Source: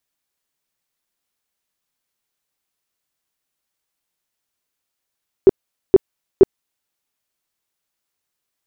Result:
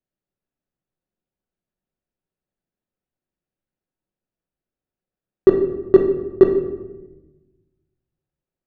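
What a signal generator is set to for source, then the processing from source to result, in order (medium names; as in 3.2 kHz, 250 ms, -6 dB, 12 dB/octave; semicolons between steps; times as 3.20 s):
tone bursts 385 Hz, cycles 9, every 0.47 s, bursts 3, -2.5 dBFS
median filter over 41 samples; distance through air 150 m; simulated room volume 520 m³, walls mixed, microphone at 1 m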